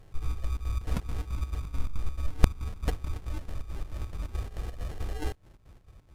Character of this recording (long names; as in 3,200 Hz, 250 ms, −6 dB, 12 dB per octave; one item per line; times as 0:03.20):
chopped level 4.6 Hz, depth 65%, duty 60%
phaser sweep stages 6, 3.5 Hz, lowest notch 610–1,600 Hz
aliases and images of a low sample rate 1,200 Hz, jitter 0%
Ogg Vorbis